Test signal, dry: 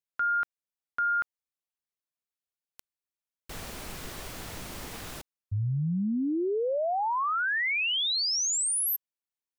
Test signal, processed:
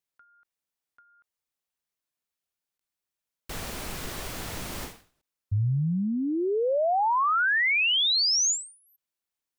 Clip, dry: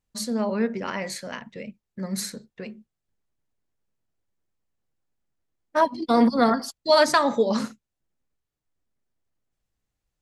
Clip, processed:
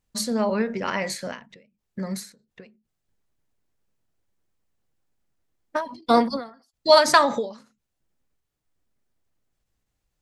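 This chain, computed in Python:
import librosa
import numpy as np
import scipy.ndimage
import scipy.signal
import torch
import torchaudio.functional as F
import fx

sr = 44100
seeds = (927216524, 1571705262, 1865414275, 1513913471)

y = fx.dynamic_eq(x, sr, hz=260.0, q=0.97, threshold_db=-36.0, ratio=2.5, max_db=-4)
y = fx.end_taper(y, sr, db_per_s=140.0)
y = F.gain(torch.from_numpy(y), 4.5).numpy()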